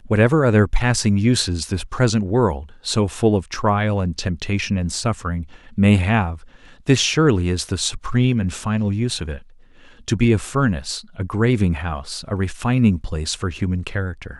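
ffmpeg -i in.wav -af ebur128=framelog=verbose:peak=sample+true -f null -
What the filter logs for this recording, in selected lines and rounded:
Integrated loudness:
  I:         -20.0 LUFS
  Threshold: -30.3 LUFS
Loudness range:
  LRA:         2.8 LU
  Threshold: -40.6 LUFS
  LRA low:   -21.8 LUFS
  LRA high:  -19.1 LUFS
Sample peak:
  Peak:       -1.9 dBFS
True peak:
  Peak:       -1.9 dBFS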